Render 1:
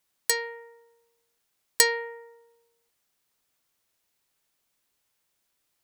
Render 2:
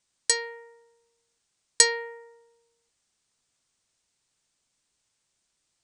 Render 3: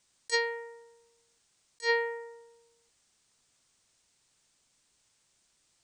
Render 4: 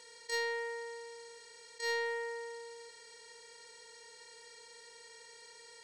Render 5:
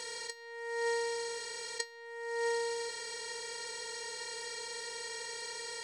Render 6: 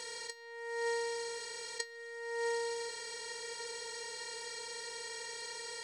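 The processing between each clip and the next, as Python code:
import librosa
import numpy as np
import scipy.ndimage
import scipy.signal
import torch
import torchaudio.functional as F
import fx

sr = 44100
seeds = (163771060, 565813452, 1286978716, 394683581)

y1 = scipy.signal.sosfilt(scipy.signal.butter(12, 9100.0, 'lowpass', fs=sr, output='sos'), x)
y1 = fx.bass_treble(y1, sr, bass_db=5, treble_db=7)
y1 = y1 * 10.0 ** (-1.5 / 20.0)
y2 = fx.over_compress(y1, sr, threshold_db=-28.0, ratio=-0.5)
y3 = fx.bin_compress(y2, sr, power=0.4)
y3 = 10.0 ** (-23.5 / 20.0) * np.tanh(y3 / 10.0 ** (-23.5 / 20.0))
y3 = y3 * 10.0 ** (-6.0 / 20.0)
y4 = fx.over_compress(y3, sr, threshold_db=-44.0, ratio=-0.5)
y4 = y4 * 10.0 ** (8.5 / 20.0)
y5 = y4 + 10.0 ** (-16.5 / 20.0) * np.pad(y4, (int(1134 * sr / 1000.0), 0))[:len(y4)]
y5 = y5 * 10.0 ** (-2.0 / 20.0)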